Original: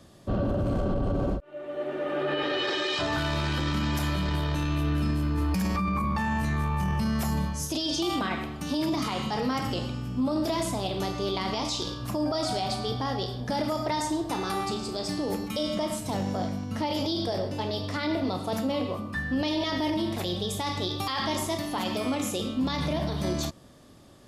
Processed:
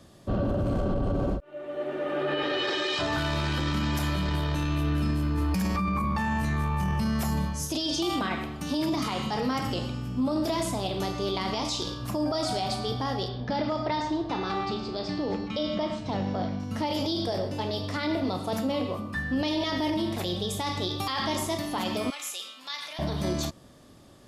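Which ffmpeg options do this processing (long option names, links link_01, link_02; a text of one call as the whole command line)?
ffmpeg -i in.wav -filter_complex "[0:a]asettb=1/sr,asplit=3[link_01][link_02][link_03];[link_01]atrim=end=13.284[link_04];[link_02]atrim=start=13.28:end=16.6,asetpts=PTS-STARTPTS,afade=type=in:duration=0.004:curve=qsin,afade=type=out:start_time=3.316:duration=0.004:curve=qsin,lowpass=frequency=4700:width=0.5412,lowpass=frequency=4700:width=1.3066[link_05];[link_03]atrim=start=16.596[link_06];[link_04][link_05]acrossfade=duration=0.004:curve1=hsin:curve2=qsin[link_07];[link_07][link_06]acrossfade=duration=0.004:curve1=qsin:curve2=hsin,asettb=1/sr,asplit=3[link_08][link_09][link_10];[link_08]atrim=end=22.104[link_11];[link_09]atrim=start=22.1:end=22.99,asetpts=PTS-STARTPTS,afade=type=in:duration=0.004:curve=qsin,afade=type=out:start_time=0.886:duration=0.004:curve=qsin,highpass=1500[link_12];[link_10]atrim=start=22.986[link_13];[link_11][link_12]acrossfade=duration=0.004:curve1=hsin:curve2=qsin[link_14];[link_14][link_13]acrossfade=duration=0.004:curve1=qsin:curve2=hsin" out.wav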